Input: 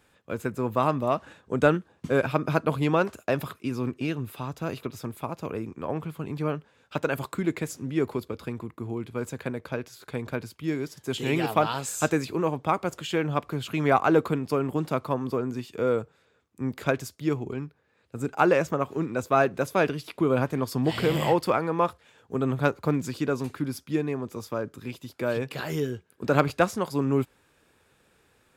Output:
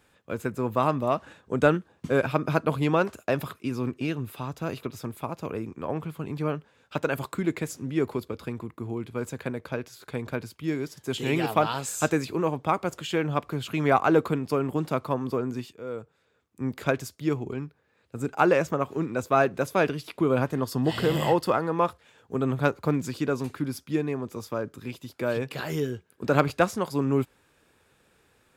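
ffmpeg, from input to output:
ffmpeg -i in.wav -filter_complex "[0:a]asettb=1/sr,asplit=3[link_01][link_02][link_03];[link_01]atrim=end=20.524[link_04];[link_02]atrim=start=20.52:end=21.76,asetpts=PTS-STARTPTS,afade=type=in:duration=0.004:curve=qsin,afade=type=out:start_time=1.236:duration=0.004:curve=qsin,asuperstop=centerf=2300:order=4:qfactor=7.4[link_05];[link_03]atrim=start=21.756[link_06];[link_04][link_05]acrossfade=duration=0.004:curve1=hsin:curve2=qsin[link_07];[link_07][link_06]acrossfade=duration=0.004:curve1=qsin:curve2=hsin,asplit=2[link_08][link_09];[link_08]atrim=end=15.73,asetpts=PTS-STARTPTS,afade=type=out:start_time=15.726:duration=0.004:curve=hsin:silence=0.141254[link_10];[link_09]atrim=start=15.73,asetpts=PTS-STARTPTS,afade=type=in:duration=0.93:silence=0.141254[link_11];[link_10][link_11]concat=n=2:v=0:a=1" out.wav

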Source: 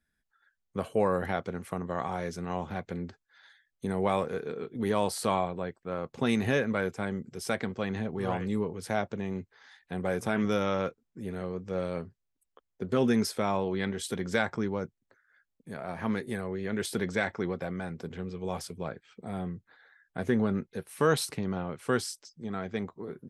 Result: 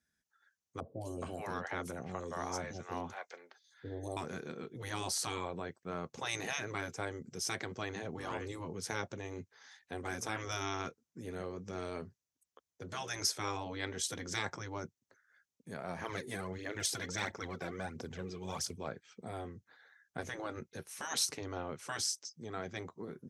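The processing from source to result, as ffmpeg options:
ffmpeg -i in.wav -filter_complex "[0:a]asettb=1/sr,asplit=3[link_01][link_02][link_03];[link_01]atrim=end=0.804[link_04];[link_02]atrim=start=0.8:end=4.17,asetpts=PTS-STARTPTS,afade=type=in:duration=0.004:curve=qsin,afade=type=out:start_time=3.366:duration=0.004:curve=qsin,acrossover=split=550|3900[link_05][link_06][link_07];[link_07]adelay=210[link_08];[link_06]adelay=420[link_09];[link_05][link_09][link_08]amix=inputs=3:normalize=0,atrim=end_sample=148617[link_10];[link_03]atrim=start=4.166[link_11];[link_04][link_10]acrossfade=duration=0.004:curve1=hsin:curve2=qsin[link_12];[link_12][link_11]acrossfade=duration=0.004:curve1=qsin:curve2=hsin,asplit=3[link_13][link_14][link_15];[link_13]afade=type=out:start_time=16.03:duration=0.02[link_16];[link_14]aphaser=in_gain=1:out_gain=1:delay=3.1:decay=0.6:speed=1.5:type=triangular,afade=type=in:start_time=16.03:duration=0.02,afade=type=out:start_time=18.75:duration=0.02[link_17];[link_15]afade=type=in:start_time=18.75:duration=0.02[link_18];[link_16][link_17][link_18]amix=inputs=3:normalize=0,afftfilt=real='re*lt(hypot(re,im),0.126)':imag='im*lt(hypot(re,im),0.126)':win_size=1024:overlap=0.75,highpass=69,equalizer=frequency=6100:width_type=o:width=0.6:gain=11.5,volume=-3.5dB" out.wav

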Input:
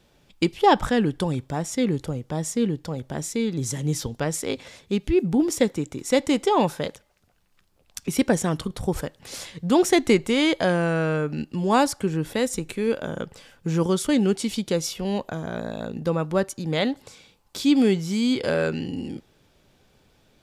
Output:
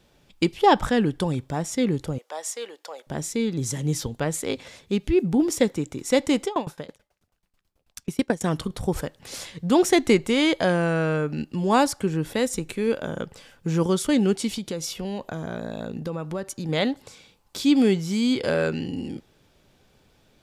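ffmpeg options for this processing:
ffmpeg -i in.wav -filter_complex "[0:a]asettb=1/sr,asplit=3[link_01][link_02][link_03];[link_01]atrim=end=2.184[link_04];[link_02]atrim=start=2.18:end=3.07,asetpts=PTS-STARTPTS,afade=type=in:duration=0.004:curve=qsin,afade=type=out:start_time=0.886:duration=0.004:curve=qsin,highpass=frequency=550:width=0.5412,highpass=frequency=550:width=1.3066[link_05];[link_03]atrim=start=3.066[link_06];[link_04][link_05]acrossfade=duration=0.004:curve1=hsin:curve2=qsin[link_07];[link_07][link_06]acrossfade=duration=0.004:curve1=qsin:curve2=hsin,asettb=1/sr,asplit=3[link_08][link_09][link_10];[link_08]atrim=end=4.054[link_11];[link_09]atrim=start=4.05:end=4.45,asetpts=PTS-STARTPTS,afade=type=in:duration=0.004:curve=qsin,afade=type=out:start_time=0.396:duration=0.004:curve=qsin,equalizer=frequency=5400:width_type=o:width=0.21:gain=-9.5[link_12];[link_10]atrim=start=4.446[link_13];[link_11][link_12]acrossfade=duration=0.004:curve1=hsin:curve2=qsin[link_14];[link_14][link_13]acrossfade=duration=0.004:curve1=qsin:curve2=hsin,asettb=1/sr,asplit=3[link_15][link_16][link_17];[link_15]atrim=end=6.454[link_18];[link_16]atrim=start=6.45:end=8.44,asetpts=PTS-STARTPTS,afade=type=in:duration=0.004:curve=qsin,afade=type=out:start_time=1.986:duration=0.004:curve=qsin,aeval=exprs='val(0)*pow(10,-23*if(lt(mod(9.2*n/s,1),2*abs(9.2)/1000),1-mod(9.2*n/s,1)/(2*abs(9.2)/1000),(mod(9.2*n/s,1)-2*abs(9.2)/1000)/(1-2*abs(9.2)/1000))/20)':channel_layout=same[link_19];[link_17]atrim=start=8.436[link_20];[link_18][link_19]acrossfade=duration=0.004:curve1=hsin:curve2=qsin[link_21];[link_21][link_20]acrossfade=duration=0.004:curve1=qsin:curve2=hsin,asettb=1/sr,asplit=3[link_22][link_23][link_24];[link_22]atrim=end=14.514[link_25];[link_23]atrim=start=14.51:end=16.69,asetpts=PTS-STARTPTS,afade=type=in:duration=0.004:curve=qsin,afade=type=out:start_time=2.176:duration=0.004:curve=qsin,acompressor=threshold=-26dB:ratio=4:attack=3.2:release=140:knee=1:detection=peak[link_26];[link_24]atrim=start=16.686[link_27];[link_25][link_26]acrossfade=duration=0.004:curve1=hsin:curve2=qsin[link_28];[link_28][link_27]acrossfade=duration=0.004:curve1=qsin:curve2=hsin" out.wav

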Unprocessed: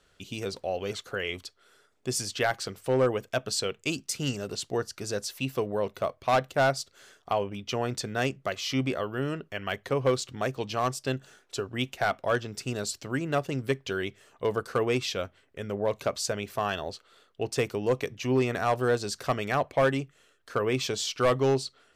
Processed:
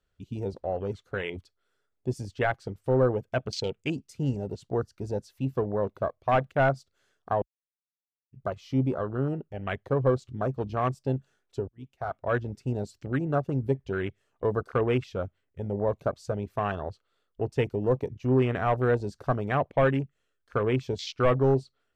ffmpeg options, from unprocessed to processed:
ffmpeg -i in.wav -filter_complex "[0:a]asplit=4[link_01][link_02][link_03][link_04];[link_01]atrim=end=7.42,asetpts=PTS-STARTPTS,afade=type=out:start_time=7.416:duration=0.004:curve=hsin[link_05];[link_02]atrim=start=7.42:end=8.33,asetpts=PTS-STARTPTS,volume=0[link_06];[link_03]atrim=start=8.33:end=11.68,asetpts=PTS-STARTPTS,afade=type=in:duration=0.004:curve=hsin,afade=type=out:start_time=3.346:duration=0.004:curve=hsin[link_07];[link_04]atrim=start=11.68,asetpts=PTS-STARTPTS,afade=type=in:duration=0.73[link_08];[link_05][link_06][link_07][link_08]concat=n=4:v=0:a=1,highshelf=frequency=4400:gain=-5,afwtdn=0.02,lowshelf=frequency=120:gain=11" out.wav

